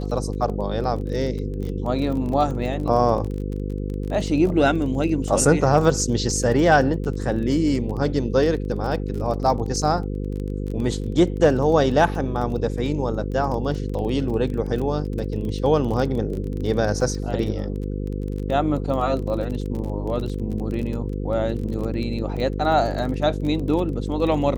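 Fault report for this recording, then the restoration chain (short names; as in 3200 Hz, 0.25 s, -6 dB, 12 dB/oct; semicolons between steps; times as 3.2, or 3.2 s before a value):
buzz 50 Hz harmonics 10 -27 dBFS
crackle 22/s -28 dBFS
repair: de-click; de-hum 50 Hz, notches 10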